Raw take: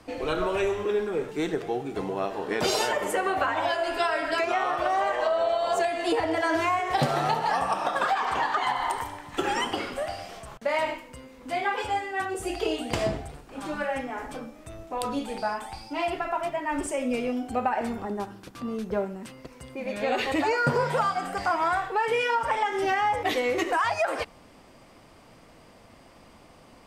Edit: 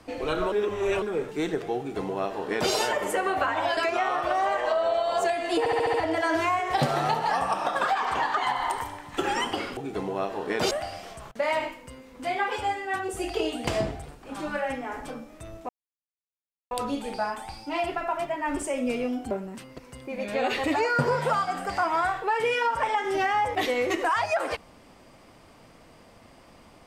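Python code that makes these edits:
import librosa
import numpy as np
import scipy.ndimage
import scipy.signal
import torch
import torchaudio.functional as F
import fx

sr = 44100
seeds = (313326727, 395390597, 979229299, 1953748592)

y = fx.edit(x, sr, fx.reverse_span(start_s=0.52, length_s=0.5),
    fx.duplicate(start_s=1.78, length_s=0.94, to_s=9.97),
    fx.cut(start_s=3.77, length_s=0.55),
    fx.stutter(start_s=6.14, slice_s=0.07, count=6),
    fx.insert_silence(at_s=14.95, length_s=1.02),
    fx.cut(start_s=17.55, length_s=1.44), tone=tone)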